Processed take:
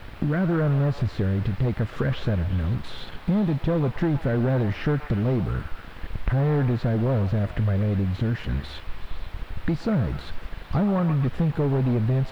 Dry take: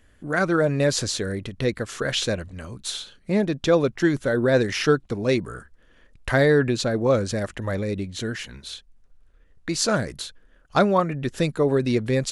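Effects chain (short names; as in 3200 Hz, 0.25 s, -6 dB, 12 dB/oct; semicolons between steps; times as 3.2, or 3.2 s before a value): de-esser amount 100%; tone controls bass +13 dB, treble +12 dB; sample leveller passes 3; in parallel at +2 dB: limiter -19.5 dBFS, peak gain reduction 17.5 dB; on the sum: compressor 4:1, threshold -24 dBFS, peak gain reduction 16.5 dB; requantised 6-bit, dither triangular; air absorption 450 m; delay with a stepping band-pass 0.124 s, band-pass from 980 Hz, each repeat 0.7 oct, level -6 dB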